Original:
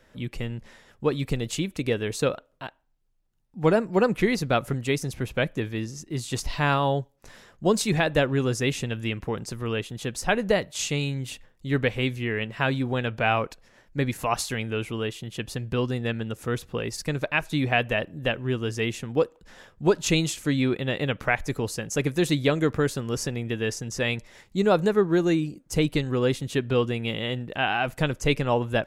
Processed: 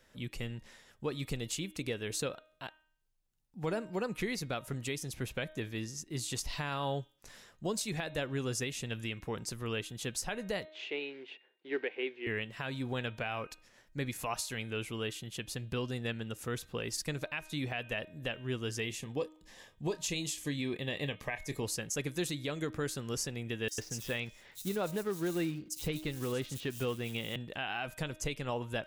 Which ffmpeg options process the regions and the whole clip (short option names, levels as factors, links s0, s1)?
-filter_complex "[0:a]asettb=1/sr,asplit=3[s0][s1][s2];[s0]atrim=end=10.654[s3];[s1]atrim=start=10.65:end=12.27,asetpts=PTS-STARTPTS,afade=t=in:d=0.004:c=qsin,afade=t=out:st=1.616:d=0.004:c=qsin,acrusher=bits=5:mode=log:mix=0:aa=0.000001,highpass=f=340:w=0.5412,highpass=f=340:w=1.3066,equalizer=f=380:t=q:w=4:g=9,equalizer=f=560:t=q:w=4:g=-4,equalizer=f=1200:t=q:w=4:g=-8,lowpass=f=2700:w=0.5412,lowpass=f=2700:w=1.3066[s4];[s2]atrim=start=12.266[s5];[s3][s4]acrossfade=d=0.004:c1=hsin:c2=qsin[s6];[s6][s5]acrossfade=d=0.004:c1=qsin:c2=hsin,asettb=1/sr,asplit=3[s7][s8][s9];[s7]atrim=end=18.814[s10];[s8]atrim=start=18.81:end=21.64,asetpts=PTS-STARTPTS,afade=t=in:d=0.004:c=qsin,afade=t=out:st=2.826:d=0.004:c=qsin,asuperstop=centerf=1400:order=8:qfactor=4.9,asplit=2[s11][s12];[s12]adelay=28,volume=0.211[s13];[s11][s13]amix=inputs=2:normalize=0,atrim=end_sample=124803[s14];[s9]atrim=start=21.636[s15];[s10][s14]acrossfade=d=0.004:c1=hsin:c2=qsin[s16];[s16][s15]acrossfade=d=0.004:c1=qsin:c2=hsin,asettb=1/sr,asplit=3[s17][s18][s19];[s17]atrim=end=23.684[s20];[s18]atrim=start=23.68:end=27.36,asetpts=PTS-STARTPTS,afade=t=in:d=0.004:c=qsin,afade=t=out:st=3.676:d=0.004:c=qsin,highshelf=f=7700:g=-4.5,acrusher=bits=5:mode=log:mix=0:aa=0.000001,acrossover=split=4500[s21][s22];[s21]adelay=100[s23];[s23][s22]amix=inputs=2:normalize=0,atrim=end_sample=162288[s24];[s19]atrim=start=27.356[s25];[s20][s24]acrossfade=d=0.004:c1=hsin:c2=qsin[s26];[s26][s25]acrossfade=d=0.004:c1=qsin:c2=hsin,highshelf=f=2700:g=8.5,bandreject=f=311.6:t=h:w=4,bandreject=f=623.2:t=h:w=4,bandreject=f=934.8:t=h:w=4,bandreject=f=1246.4:t=h:w=4,bandreject=f=1558:t=h:w=4,bandreject=f=1869.6:t=h:w=4,bandreject=f=2181.2:t=h:w=4,bandreject=f=2492.8:t=h:w=4,bandreject=f=2804.4:t=h:w=4,bandreject=f=3116:t=h:w=4,bandreject=f=3427.6:t=h:w=4,bandreject=f=3739.2:t=h:w=4,bandreject=f=4050.8:t=h:w=4,alimiter=limit=0.158:level=0:latency=1:release=268,volume=0.376"